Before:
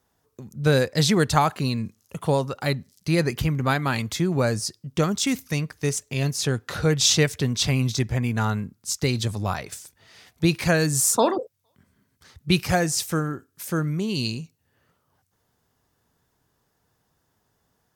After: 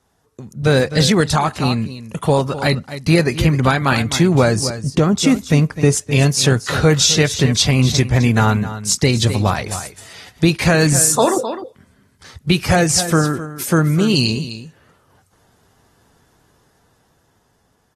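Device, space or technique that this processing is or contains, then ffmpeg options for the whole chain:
low-bitrate web radio: -filter_complex "[0:a]asettb=1/sr,asplit=3[link_01][link_02][link_03];[link_01]atrim=end=4.644[link_04];[link_02]atrim=start=4.64:end=5.93,asetpts=PTS-STARTPTS,afade=type=in:duration=0.004:curve=qsin,afade=type=out:start_time=1.286:duration=0.004:curve=qsin,tiltshelf=frequency=1300:gain=5[link_05];[link_03]atrim=start=5.926[link_06];[link_04][link_05]acrossfade=duration=0.004:curve1=hsin:curve2=qsin[link_07];[link_07][link_06]acrossfade=duration=0.004:curve1=qsin:curve2=hsin,aecho=1:1:257:0.188,dynaudnorm=framelen=350:gausssize=11:maxgain=8dB,alimiter=limit=-10dB:level=0:latency=1:release=286,volume=6dB" -ar 44100 -c:a aac -b:a 32k

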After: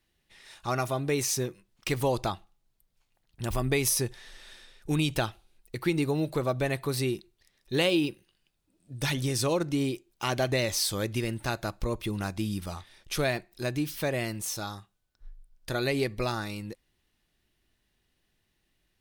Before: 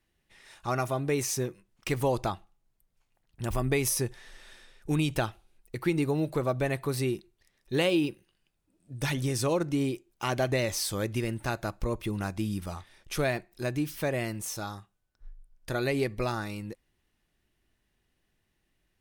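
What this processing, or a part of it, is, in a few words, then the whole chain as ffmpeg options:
presence and air boost: -af "equalizer=frequency=4000:width_type=o:width=1:gain=5,highshelf=frequency=9700:gain=3.5"

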